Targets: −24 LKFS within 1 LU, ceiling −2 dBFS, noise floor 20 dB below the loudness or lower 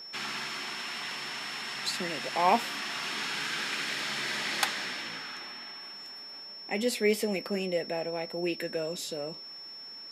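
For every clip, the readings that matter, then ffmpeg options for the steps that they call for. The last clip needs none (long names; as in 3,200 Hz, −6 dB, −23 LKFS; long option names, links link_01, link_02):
interfering tone 5,400 Hz; level of the tone −42 dBFS; integrated loudness −32.0 LKFS; sample peak −10.5 dBFS; target loudness −24.0 LKFS
→ -af "bandreject=frequency=5400:width=30"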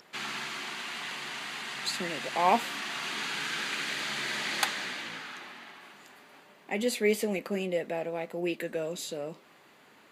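interfering tone none found; integrated loudness −32.0 LKFS; sample peak −11.0 dBFS; target loudness −24.0 LKFS
→ -af "volume=8dB"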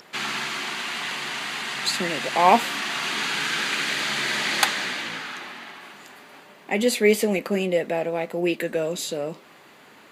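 integrated loudness −24.0 LKFS; sample peak −3.0 dBFS; background noise floor −50 dBFS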